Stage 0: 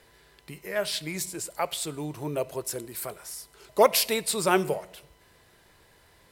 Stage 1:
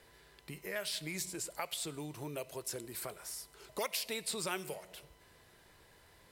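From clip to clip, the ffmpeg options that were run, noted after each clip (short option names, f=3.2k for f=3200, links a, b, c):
-filter_complex "[0:a]acrossover=split=1800|7200[a][b][c];[a]acompressor=threshold=-37dB:ratio=4[d];[b]acompressor=threshold=-35dB:ratio=4[e];[c]acompressor=threshold=-40dB:ratio=4[f];[d][e][f]amix=inputs=3:normalize=0,volume=-3.5dB"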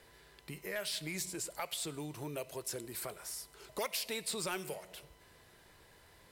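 -af "asoftclip=type=tanh:threshold=-28dB,volume=1dB"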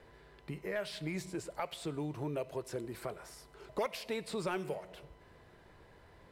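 -af "lowpass=f=1.1k:p=1,volume=5dB"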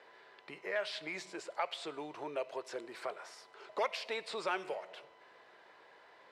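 -af "highpass=600,lowpass=5.3k,volume=4dB"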